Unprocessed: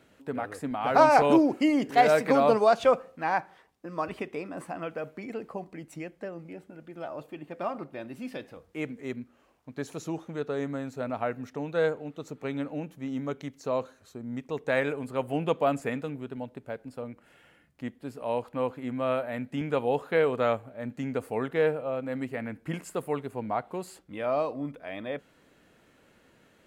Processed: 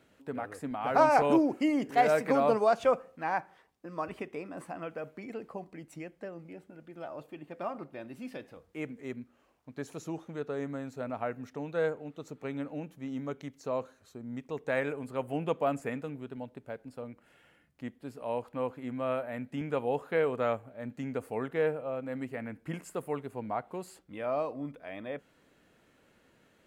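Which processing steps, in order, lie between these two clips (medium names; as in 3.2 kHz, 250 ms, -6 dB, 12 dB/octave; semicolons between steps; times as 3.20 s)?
dynamic bell 3.9 kHz, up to -5 dB, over -53 dBFS, Q 1.9; trim -4 dB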